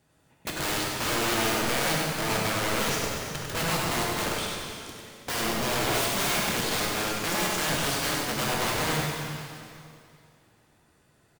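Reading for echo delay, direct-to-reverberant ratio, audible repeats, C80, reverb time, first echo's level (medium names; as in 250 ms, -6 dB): 98 ms, -4.0 dB, 1, -1.0 dB, 2.5 s, -4.5 dB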